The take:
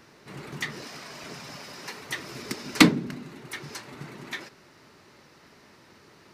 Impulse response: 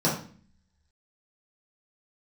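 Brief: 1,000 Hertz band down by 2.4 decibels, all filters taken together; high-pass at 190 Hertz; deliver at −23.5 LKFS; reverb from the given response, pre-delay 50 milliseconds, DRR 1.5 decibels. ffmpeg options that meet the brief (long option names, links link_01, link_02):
-filter_complex "[0:a]highpass=190,equalizer=frequency=1000:width_type=o:gain=-3,asplit=2[link_01][link_02];[1:a]atrim=start_sample=2205,adelay=50[link_03];[link_02][link_03]afir=irnorm=-1:irlink=0,volume=-14.5dB[link_04];[link_01][link_04]amix=inputs=2:normalize=0,volume=-2.5dB"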